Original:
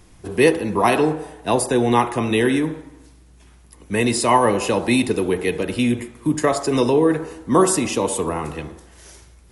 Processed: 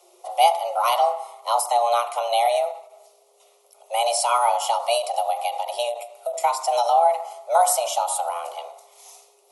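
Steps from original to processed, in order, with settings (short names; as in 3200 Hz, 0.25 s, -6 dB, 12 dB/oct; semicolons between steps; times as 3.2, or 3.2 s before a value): frequency shift +350 Hz; low shelf 170 Hz -11.5 dB; fixed phaser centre 440 Hz, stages 6; de-hum 149.4 Hz, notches 4; ending taper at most 150 dB/s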